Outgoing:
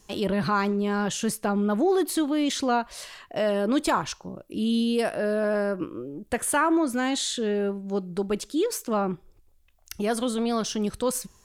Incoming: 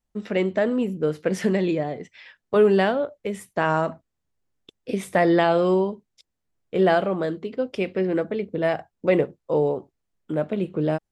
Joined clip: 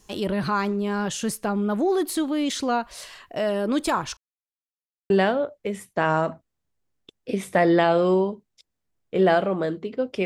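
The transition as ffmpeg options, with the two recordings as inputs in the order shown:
-filter_complex "[0:a]apad=whole_dur=10.25,atrim=end=10.25,asplit=2[a][b];[a]atrim=end=4.17,asetpts=PTS-STARTPTS,afade=t=out:st=4.166:d=0.004:c=hsin[c];[b]atrim=start=4.17:end=5.1,asetpts=PTS-STARTPTS,volume=0[d];[1:a]atrim=start=2.7:end=7.85,asetpts=PTS-STARTPTS,afade=t=in:d=0.004:c=hsin[e];[c][d][e]concat=n=3:v=0:a=1"

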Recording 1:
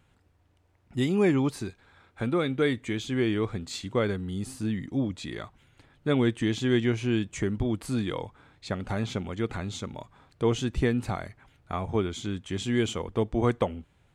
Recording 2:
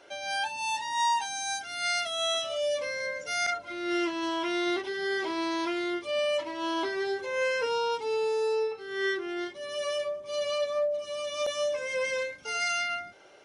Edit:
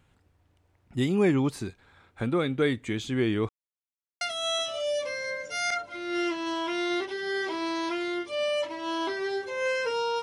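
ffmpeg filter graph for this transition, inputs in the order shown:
-filter_complex "[0:a]apad=whole_dur=10.22,atrim=end=10.22,asplit=2[a][b];[a]atrim=end=3.49,asetpts=PTS-STARTPTS,afade=t=out:st=3.486:d=0.004:c=hsin[c];[b]atrim=start=3.49:end=4.21,asetpts=PTS-STARTPTS,volume=0[d];[1:a]atrim=start=1.97:end=7.98,asetpts=PTS-STARTPTS,afade=t=in:d=0.004:c=hsin[e];[c][d][e]concat=n=3:v=0:a=1"

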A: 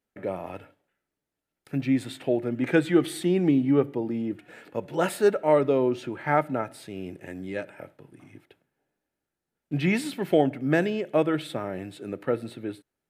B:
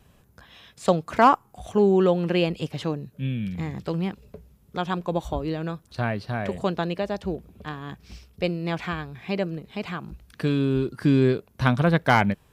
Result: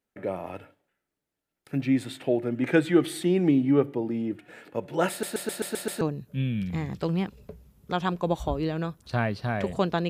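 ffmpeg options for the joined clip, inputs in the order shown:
-filter_complex "[0:a]apad=whole_dur=10.09,atrim=end=10.09,asplit=7[a][b][c][d][e][f][g];[a]atrim=end=5.232[h];[b]atrim=start=5.098:end=5.232[i];[c]atrim=start=5.098:end=5.232[j];[d]atrim=start=5.098:end=5.232[k];[e]atrim=start=5.098:end=5.232[l];[f]atrim=start=5.098:end=5.232[m];[g]atrim=start=5.098:end=5.232[n];[1:a]atrim=start=2.858:end=6.94[o];[h][i]acrossfade=d=0.004:c1=hsin:c2=hsin[p];[p][j]acrossfade=d=0.004:c1=hsin:c2=hsin[q];[q][k]acrossfade=d=0.004:c1=hsin:c2=hsin[r];[r][l]acrossfade=d=0.004:c1=hsin:c2=hsin[s];[s][m]acrossfade=d=0.004:c1=hsin:c2=hsin[t];[t][n]acrossfade=d=0.004:c1=hsin:c2=hsin[u];[u][o]acrossfade=d=0.004:c1=hsin:c2=hsin"

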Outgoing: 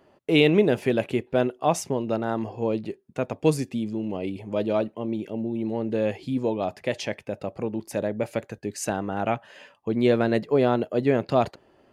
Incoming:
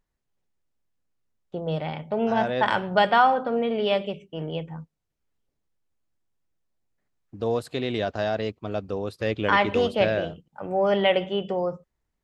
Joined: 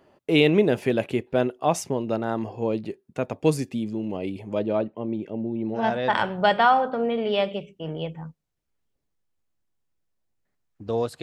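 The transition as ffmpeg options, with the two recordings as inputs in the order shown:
-filter_complex "[0:a]asettb=1/sr,asplit=3[a][b][c];[a]atrim=end=4.594[d];[b]atrim=start=4.59:end=5.85,asetpts=PTS-STARTPTS,afade=t=in:d=0.004:c=qsin,afade=t=out:st=1.256:d=0.004:c=qsin,lowpass=f=1.9k:p=1[e];[c]atrim=start=5.846[f];[d][e]acrossfade=d=0.004:c1=hsin:c2=qsin[g];[g][f]acrossfade=d=0.004:c1=qsin:c2=hsin,apad=whole_dur=11.22,atrim=end=11.22,atrim=end=5.85,asetpts=PTS-STARTPTS[h];[1:a]atrim=start=2.26:end=7.75,asetpts=PTS-STARTPTS[i];[h][i]acrossfade=d=0.12:c1=tri:c2=tri"

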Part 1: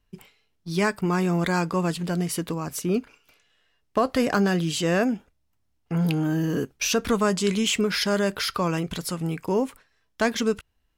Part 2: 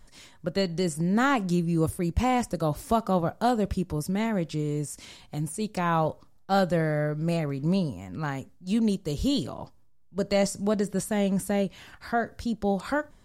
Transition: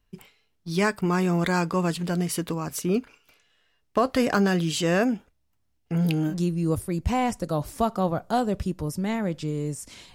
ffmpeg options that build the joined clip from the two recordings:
-filter_complex "[0:a]asettb=1/sr,asplit=3[a][b][c];[a]atrim=end=5.784[d];[b]atrim=start=5.78:end=6.35,asetpts=PTS-STARTPTS,afade=t=in:d=0.004:c=qsin,afade=t=out:st=0.566:d=0.004:c=qsin,equalizer=f=1.1k:w=1.9:g=-8.5[e];[c]atrim=start=6.346[f];[d][e]acrossfade=d=0.004:c1=hsin:c2=qsin[g];[g][f]acrossfade=d=0.004:c1=qsin:c2=hsin,apad=whole_dur=10.14,atrim=end=10.14,atrim=end=6.35,asetpts=PTS-STARTPTS[h];[1:a]atrim=start=1.38:end=5.25,asetpts=PTS-STARTPTS[i];[h][i]acrossfade=d=0.08:c1=tri:c2=tri"

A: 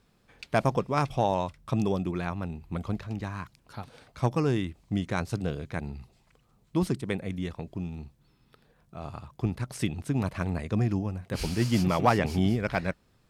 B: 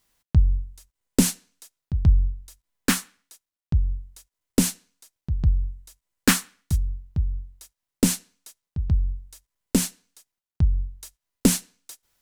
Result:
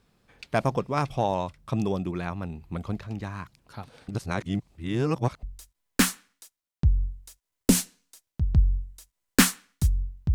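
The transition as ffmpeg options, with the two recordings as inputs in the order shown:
-filter_complex "[0:a]apad=whole_dur=10.34,atrim=end=10.34,asplit=2[a][b];[a]atrim=end=4.082[c];[b]atrim=start=4.078:end=5.432,asetpts=PTS-STARTPTS,areverse[d];[1:a]atrim=start=2.318:end=7.23[e];[c][d]acrossfade=d=0.004:c1=hsin:c2=hsin[f];[f][e]acrossfade=d=0.004:c1=hsin:c2=hsin"

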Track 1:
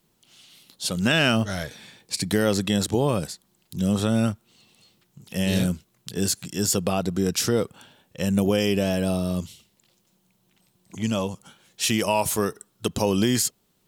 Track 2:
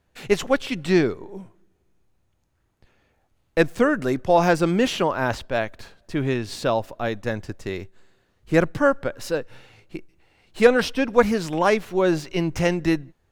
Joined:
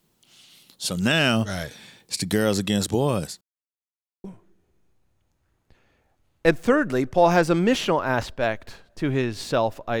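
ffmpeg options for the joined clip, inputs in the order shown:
-filter_complex "[0:a]apad=whole_dur=10,atrim=end=10,asplit=2[a][b];[a]atrim=end=3.41,asetpts=PTS-STARTPTS,afade=t=out:st=3.406:d=0.004:c=hsin[c];[b]atrim=start=3.41:end=4.24,asetpts=PTS-STARTPTS,volume=0[d];[1:a]atrim=start=1.36:end=7.12,asetpts=PTS-STARTPTS,afade=t=in:d=0.004:c=hsin[e];[c][d][e]concat=n=3:v=0:a=1"

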